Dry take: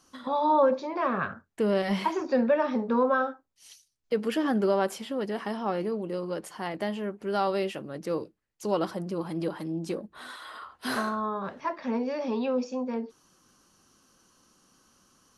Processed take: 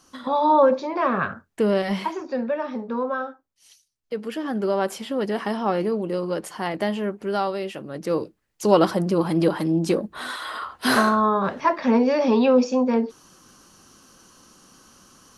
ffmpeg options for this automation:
ffmpeg -i in.wav -af "volume=26dB,afade=type=out:start_time=1.61:duration=0.61:silence=0.421697,afade=type=in:start_time=4.45:duration=0.83:silence=0.375837,afade=type=out:start_time=7.13:duration=0.46:silence=0.421697,afade=type=in:start_time=7.59:duration=1.18:silence=0.251189" out.wav

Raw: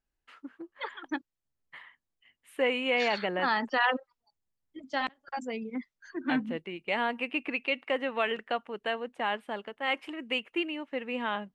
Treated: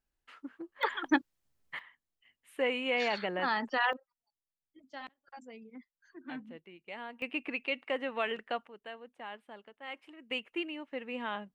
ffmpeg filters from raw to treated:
ffmpeg -i in.wav -af "asetnsamples=nb_out_samples=441:pad=0,asendcmd='0.83 volume volume 7dB;1.79 volume volume -3.5dB;3.93 volume volume -14dB;7.22 volume volume -4dB;8.68 volume volume -13.5dB;10.31 volume volume -5dB',volume=-0.5dB" out.wav

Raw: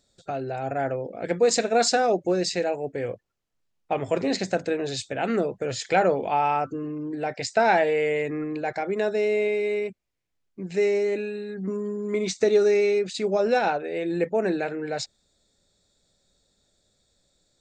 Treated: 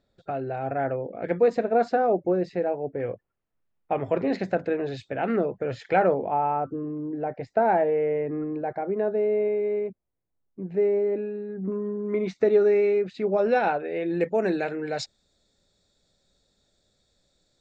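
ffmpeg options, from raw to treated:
ffmpeg -i in.wav -af "asetnsamples=nb_out_samples=441:pad=0,asendcmd='1.48 lowpass f 1200;3 lowpass f 2000;6.14 lowpass f 1000;11.72 lowpass f 1800;13.38 lowpass f 2700;14.21 lowpass f 6300',lowpass=2200" out.wav

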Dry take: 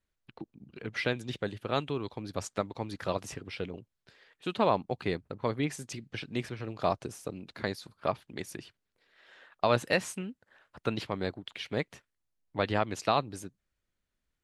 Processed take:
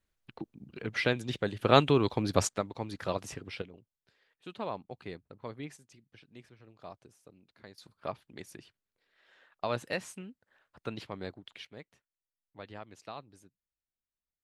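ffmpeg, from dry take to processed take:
ffmpeg -i in.wav -af "asetnsamples=nb_out_samples=441:pad=0,asendcmd='1.59 volume volume 9dB;2.49 volume volume -1dB;3.62 volume volume -11dB;5.77 volume volume -18.5dB;7.78 volume volume -7dB;11.65 volume volume -17dB',volume=2dB" out.wav

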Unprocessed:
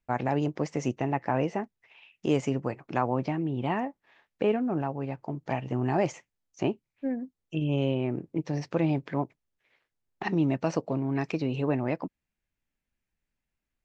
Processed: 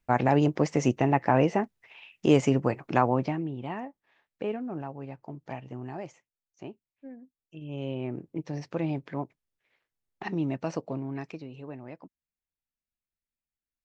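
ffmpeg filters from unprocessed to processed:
ffmpeg -i in.wav -af "volume=15dB,afade=type=out:start_time=2.93:duration=0.65:silence=0.266073,afade=type=out:start_time=5.4:duration=0.68:silence=0.421697,afade=type=in:start_time=7.6:duration=0.46:silence=0.316228,afade=type=out:start_time=10.94:duration=0.55:silence=0.316228" out.wav

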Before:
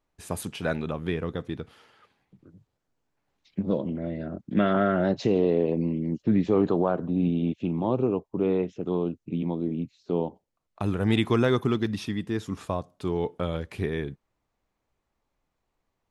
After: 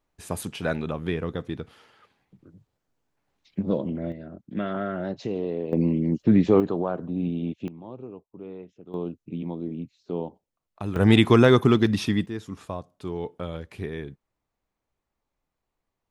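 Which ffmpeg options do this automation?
ffmpeg -i in.wav -af "asetnsamples=nb_out_samples=441:pad=0,asendcmd='4.12 volume volume -6.5dB;5.73 volume volume 4.5dB;6.6 volume volume -3dB;7.68 volume volume -15dB;8.94 volume volume -3.5dB;10.96 volume volume 6.5dB;12.26 volume volume -4dB',volume=1dB" out.wav

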